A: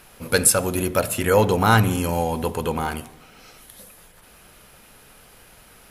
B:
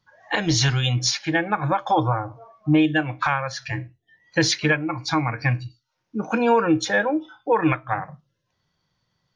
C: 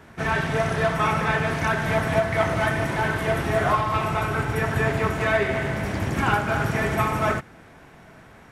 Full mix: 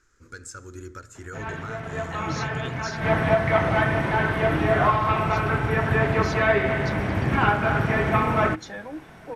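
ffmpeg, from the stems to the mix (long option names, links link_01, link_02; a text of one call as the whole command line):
ffmpeg -i stem1.wav -i stem2.wav -i stem3.wav -filter_complex "[0:a]firequalizer=gain_entry='entry(100,0);entry(170,-16);entry(330,-1);entry(670,-24);entry(1400,2);entry(2700,-17);entry(6900,3);entry(10000,-26)':delay=0.05:min_phase=1,alimiter=limit=-17.5dB:level=0:latency=1:release=343,volume=-10.5dB,asplit=2[link_01][link_02];[1:a]acrossover=split=370[link_03][link_04];[link_04]acompressor=threshold=-28dB:ratio=2[link_05];[link_03][link_05]amix=inputs=2:normalize=0,adelay=1800,volume=-12dB[link_06];[2:a]acrossover=split=3700[link_07][link_08];[link_08]acompressor=threshold=-57dB:ratio=4:attack=1:release=60[link_09];[link_07][link_09]amix=inputs=2:normalize=0,bandreject=frequency=7100:width=23,adelay=1150,volume=1.5dB[link_10];[link_02]apad=whole_len=426193[link_11];[link_10][link_11]sidechaincompress=threshold=-48dB:ratio=6:attack=16:release=184[link_12];[link_01][link_06][link_12]amix=inputs=3:normalize=0" out.wav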